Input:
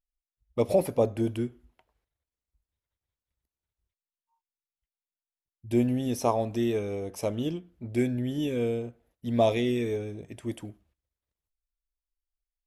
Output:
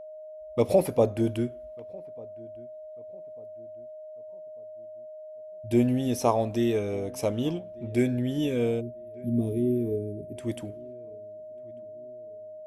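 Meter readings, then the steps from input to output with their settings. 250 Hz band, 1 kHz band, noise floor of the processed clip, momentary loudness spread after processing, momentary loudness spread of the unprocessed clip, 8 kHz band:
+2.0 dB, 0.0 dB, −43 dBFS, 19 LU, 13 LU, +2.0 dB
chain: gain on a spectral selection 0:08.81–0:10.37, 450–8,800 Hz −27 dB
feedback echo with a low-pass in the loop 1,195 ms, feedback 43%, low-pass 1,300 Hz, level −23 dB
steady tone 620 Hz −42 dBFS
level +2 dB

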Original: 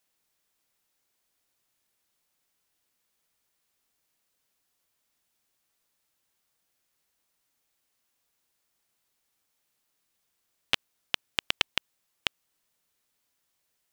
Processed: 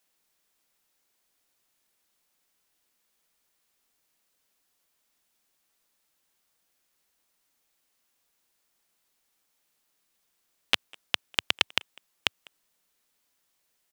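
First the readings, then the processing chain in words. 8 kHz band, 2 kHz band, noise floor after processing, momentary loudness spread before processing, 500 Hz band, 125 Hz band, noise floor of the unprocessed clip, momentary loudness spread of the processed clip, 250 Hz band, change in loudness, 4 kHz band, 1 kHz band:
+2.5 dB, +2.5 dB, −75 dBFS, 6 LU, +2.5 dB, −1.5 dB, −78 dBFS, 6 LU, +2.0 dB, +2.5 dB, +2.5 dB, +2.5 dB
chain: parametric band 100 Hz −12.5 dB 0.49 octaves
far-end echo of a speakerphone 200 ms, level −22 dB
level +2.5 dB

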